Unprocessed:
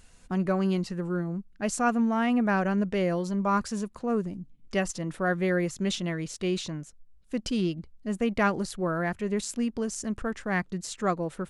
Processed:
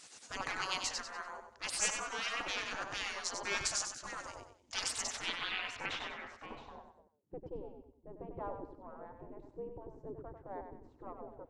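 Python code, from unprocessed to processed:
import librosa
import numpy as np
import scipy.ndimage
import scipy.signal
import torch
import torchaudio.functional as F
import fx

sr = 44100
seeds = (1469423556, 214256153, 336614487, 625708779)

p1 = fx.diode_clip(x, sr, knee_db=-27.0)
p2 = fx.filter_sweep_lowpass(p1, sr, from_hz=6400.0, to_hz=270.0, start_s=5.01, end_s=7.3, q=2.3)
p3 = fx.rider(p2, sr, range_db=10, speed_s=2.0)
p4 = p2 + (p3 * librosa.db_to_amplitude(2.0))
p5 = fx.peak_eq(p4, sr, hz=920.0, db=12.5, octaves=0.52)
p6 = fx.echo_feedback(p5, sr, ms=95, feedback_pct=35, wet_db=-7.0)
p7 = fx.wow_flutter(p6, sr, seeds[0], rate_hz=2.1, depth_cents=24.0)
p8 = fx.spec_gate(p7, sr, threshold_db=-20, keep='weak')
p9 = fx.high_shelf(p8, sr, hz=4300.0, db=6.0)
y = p9 * librosa.db_to_amplitude(-6.5)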